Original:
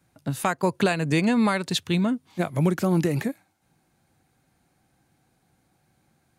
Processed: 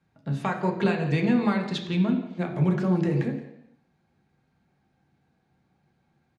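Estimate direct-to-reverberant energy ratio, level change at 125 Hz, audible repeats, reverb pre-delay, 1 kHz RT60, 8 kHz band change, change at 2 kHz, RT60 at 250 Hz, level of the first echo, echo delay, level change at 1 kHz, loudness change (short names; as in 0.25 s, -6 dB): 1.5 dB, +0.5 dB, 1, 3 ms, 0.80 s, under -15 dB, -4.0 dB, 0.80 s, -16.0 dB, 0.173 s, -3.5 dB, -1.5 dB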